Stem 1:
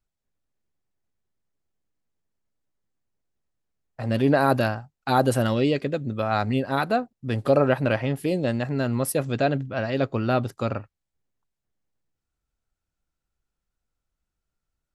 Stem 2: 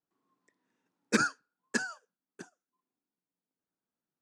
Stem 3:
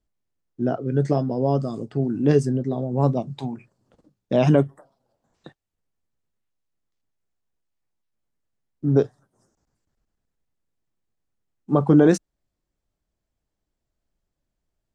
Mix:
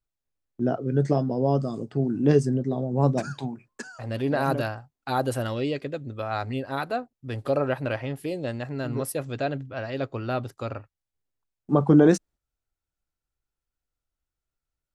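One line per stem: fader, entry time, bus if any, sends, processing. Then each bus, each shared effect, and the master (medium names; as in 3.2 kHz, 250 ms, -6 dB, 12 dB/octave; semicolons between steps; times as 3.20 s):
-5.0 dB, 0.00 s, no send, peaking EQ 200 Hz -14.5 dB 0.22 oct
-3.5 dB, 2.05 s, no send, compression, threshold -30 dBFS, peak gain reduction 10 dB
-1.5 dB, 0.00 s, no send, gate -45 dBFS, range -20 dB; auto duck -14 dB, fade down 0.55 s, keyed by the first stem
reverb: none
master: none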